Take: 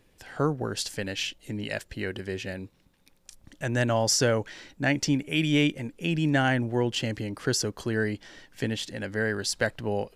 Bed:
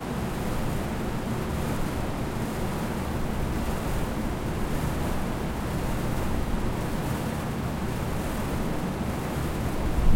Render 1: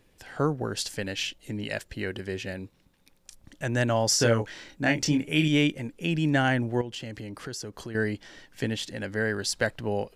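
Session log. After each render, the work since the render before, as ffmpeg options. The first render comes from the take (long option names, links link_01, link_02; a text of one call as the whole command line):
ffmpeg -i in.wav -filter_complex "[0:a]asettb=1/sr,asplit=3[link_01][link_02][link_03];[link_01]atrim=end=4.174[link_04];[link_02]atrim=start=4.17:end=5.48,asetpts=PTS-STARTPTS,afade=type=in:duration=0.004:curve=qsin,afade=type=out:start_time=1.306:duration=0.004:curve=qsin,asplit=2[link_05][link_06];[link_06]adelay=26,volume=-5dB[link_07];[link_05][link_07]amix=inputs=2:normalize=0,atrim=end_sample=57771[link_08];[link_03]atrim=start=5.476[link_09];[link_04][link_08]acrossfade=duration=0.004:curve1=hsin:curve2=qsin[link_10];[link_10][link_09]acrossfade=duration=0.004:curve1=qsin:curve2=hsin,asettb=1/sr,asplit=3[link_11][link_12][link_13];[link_11]atrim=end=6.814[link_14];[link_12]atrim=start=6.81:end=7.95,asetpts=PTS-STARTPTS,afade=type=in:duration=0.004:curve=qsin,afade=type=out:start_time=1.136:duration=0.004:curve=qsin,acompressor=threshold=-36dB:ratio=3:attack=3.2:release=140:knee=1:detection=peak[link_15];[link_13]atrim=start=7.946[link_16];[link_14][link_15]acrossfade=duration=0.004:curve1=hsin:curve2=qsin[link_17];[link_17][link_16]acrossfade=duration=0.004:curve1=qsin:curve2=hsin" out.wav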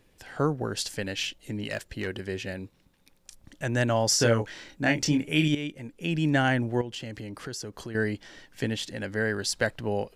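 ffmpeg -i in.wav -filter_complex "[0:a]asettb=1/sr,asplit=3[link_01][link_02][link_03];[link_01]atrim=end=1.234[link_04];[link_02]atrim=start=1.23:end=2.07,asetpts=PTS-STARTPTS,afade=type=in:duration=0.004:curve=qsin,afade=type=out:start_time=0.836:duration=0.004:curve=qsin,asoftclip=type=hard:threshold=-23.5dB[link_05];[link_03]atrim=start=2.066[link_06];[link_04][link_05]acrossfade=duration=0.004:curve1=hsin:curve2=qsin[link_07];[link_07][link_06]acrossfade=duration=0.004:curve1=qsin:curve2=hsin,asplit=2[link_08][link_09];[link_08]atrim=end=5.55,asetpts=PTS-STARTPTS,afade=type=out:start_time=5.546:duration=0.004:curve=hsin:silence=0.199526[link_10];[link_09]atrim=start=5.55,asetpts=PTS-STARTPTS,afade=type=in:duration=0.67:silence=0.199526[link_11];[link_10][link_11]concat=n=2:v=0:a=1" out.wav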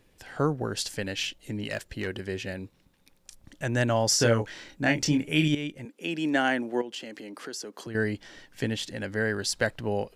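ffmpeg -i in.wav -filter_complex "[0:a]asettb=1/sr,asplit=3[link_01][link_02][link_03];[link_01]atrim=end=5.854[link_04];[link_02]atrim=start=5.85:end=7.87,asetpts=PTS-STARTPTS,afade=type=in:duration=0.004:curve=qsin,afade=type=out:start_time=2.016:duration=0.004:curve=qsin,highpass=frequency=230:width=0.5412,highpass=frequency=230:width=1.3066[link_05];[link_03]atrim=start=7.866[link_06];[link_04][link_05]acrossfade=duration=0.004:curve1=hsin:curve2=qsin[link_07];[link_07][link_06]acrossfade=duration=0.004:curve1=qsin:curve2=hsin" out.wav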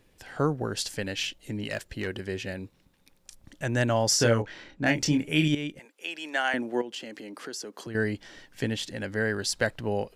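ffmpeg -i in.wav -filter_complex "[0:a]asettb=1/sr,asplit=3[link_01][link_02][link_03];[link_01]atrim=end=4.424[link_04];[link_02]atrim=start=4.42:end=4.91,asetpts=PTS-STARTPTS,afade=type=in:duration=0.004:curve=qsin,afade=type=out:start_time=0.486:duration=0.004:curve=qsin,adynamicsmooth=sensitivity=3.5:basefreq=4400[link_05];[link_03]atrim=start=4.906[link_06];[link_04][link_05]acrossfade=duration=0.004:curve1=hsin:curve2=qsin[link_07];[link_07][link_06]acrossfade=duration=0.004:curve1=qsin:curve2=hsin,asettb=1/sr,asplit=3[link_08][link_09][link_10];[link_08]atrim=end=5.794[link_11];[link_09]atrim=start=5.79:end=6.54,asetpts=PTS-STARTPTS,afade=type=in:duration=0.004:curve=qsin,afade=type=out:start_time=0.746:duration=0.004:curve=qsin,highpass=700[link_12];[link_10]atrim=start=6.536[link_13];[link_11][link_12]acrossfade=duration=0.004:curve1=hsin:curve2=qsin[link_14];[link_14][link_13]acrossfade=duration=0.004:curve1=qsin:curve2=hsin" out.wav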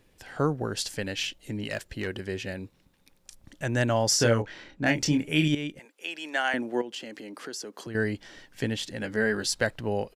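ffmpeg -i in.wav -filter_complex "[0:a]asplit=3[link_01][link_02][link_03];[link_01]afade=type=out:start_time=9:duration=0.02[link_04];[link_02]asplit=2[link_05][link_06];[link_06]adelay=14,volume=-5dB[link_07];[link_05][link_07]amix=inputs=2:normalize=0,afade=type=in:start_time=9:duration=0.02,afade=type=out:start_time=9.53:duration=0.02[link_08];[link_03]afade=type=in:start_time=9.53:duration=0.02[link_09];[link_04][link_08][link_09]amix=inputs=3:normalize=0" out.wav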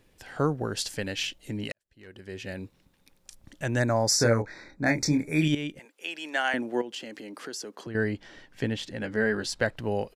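ffmpeg -i in.wav -filter_complex "[0:a]asplit=3[link_01][link_02][link_03];[link_01]afade=type=out:start_time=3.78:duration=0.02[link_04];[link_02]asuperstop=centerf=3000:order=8:qfactor=2.5,afade=type=in:start_time=3.78:duration=0.02,afade=type=out:start_time=5.41:duration=0.02[link_05];[link_03]afade=type=in:start_time=5.41:duration=0.02[link_06];[link_04][link_05][link_06]amix=inputs=3:normalize=0,asettb=1/sr,asplit=3[link_07][link_08][link_09];[link_07]atrim=end=7.754[link_10];[link_08]atrim=start=7.75:end=9.77,asetpts=PTS-STARTPTS,afade=type=in:duration=0.004:curve=qsin,afade=type=out:start_time=2.016:duration=0.004:curve=qsin,aemphasis=mode=reproduction:type=cd[link_11];[link_09]atrim=start=9.766[link_12];[link_10][link_11]acrossfade=duration=0.004:curve1=hsin:curve2=qsin[link_13];[link_13][link_12]acrossfade=duration=0.004:curve1=qsin:curve2=hsin,asplit=2[link_14][link_15];[link_14]atrim=end=1.72,asetpts=PTS-STARTPTS,afade=type=out:start_time=1.716:duration=0.004:curve=hsin[link_16];[link_15]atrim=start=1.72,asetpts=PTS-STARTPTS,afade=type=in:duration=0.87:curve=qua[link_17];[link_16][link_17]concat=n=2:v=0:a=1" out.wav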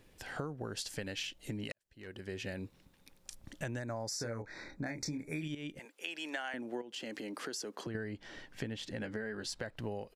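ffmpeg -i in.wav -af "alimiter=limit=-17.5dB:level=0:latency=1:release=246,acompressor=threshold=-37dB:ratio=6" out.wav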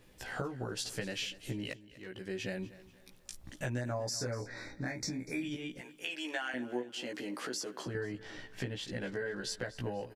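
ffmpeg -i in.wav -filter_complex "[0:a]asplit=2[link_01][link_02];[link_02]adelay=16,volume=-2dB[link_03];[link_01][link_03]amix=inputs=2:normalize=0,aecho=1:1:243|486|729:0.126|0.0504|0.0201" out.wav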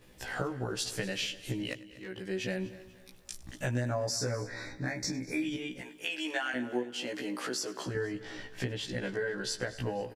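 ffmpeg -i in.wav -filter_complex "[0:a]asplit=2[link_01][link_02];[link_02]adelay=16,volume=-2.5dB[link_03];[link_01][link_03]amix=inputs=2:normalize=0,aecho=1:1:99|198|297|396|495:0.1|0.059|0.0348|0.0205|0.0121" out.wav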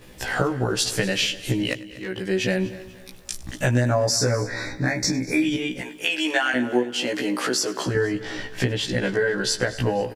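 ffmpeg -i in.wav -af "volume=11.5dB" out.wav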